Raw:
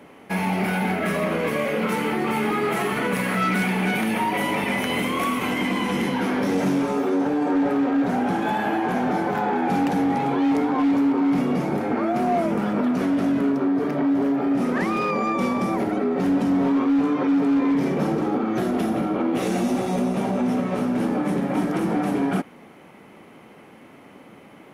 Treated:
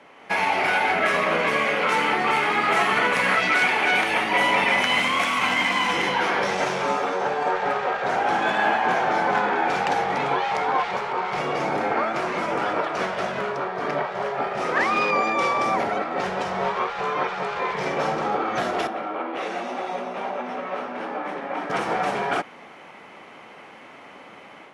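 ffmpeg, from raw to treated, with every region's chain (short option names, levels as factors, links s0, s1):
-filter_complex "[0:a]asettb=1/sr,asplit=3[s0][s1][s2];[s0]atrim=end=4.824[s3];[s1]atrim=start=4.82:end=5.93,asetpts=PTS-STARTPTS,afade=t=in:d=0.004:c=qsin,afade=t=out:st=1.106:d=0.004:c=qsin,equalizer=f=400:t=o:w=0.85:g=-8,acrusher=bits=4:mode=log:mix=0:aa=0.000001[s4];[s2]atrim=start=5.926[s5];[s3][s4]acrossfade=d=0.004:c1=hsin:c2=qsin[s6];[s6][s5]acrossfade=d=0.004:c1=qsin:c2=hsin,asettb=1/sr,asplit=3[s7][s8][s9];[s7]atrim=end=18.874[s10];[s8]atrim=start=18.87:end=21.7,asetpts=PTS-STARTPTS,afade=t=in:d=0.004:c=qsin,afade=t=out:st=2.826:d=0.004:c=qsin,bass=f=250:g=-14,treble=f=4000:g=-12,bandreject=f=7000:w=27,flanger=delay=1.9:depth=5.8:regen=-72:speed=2:shape=triangular[s11];[s9]atrim=start=21.696[s12];[s10][s11]acrossfade=d=0.004:c1=hsin:c2=qsin[s13];[s13][s12]acrossfade=d=0.004:c1=qsin:c2=hsin,afftfilt=real='re*lt(hypot(re,im),0.501)':imag='im*lt(hypot(re,im),0.501)':win_size=1024:overlap=0.75,acrossover=split=550 7800:gain=0.224 1 0.0631[s14][s15][s16];[s14][s15][s16]amix=inputs=3:normalize=0,dynaudnorm=f=170:g=3:m=2,volume=1.12"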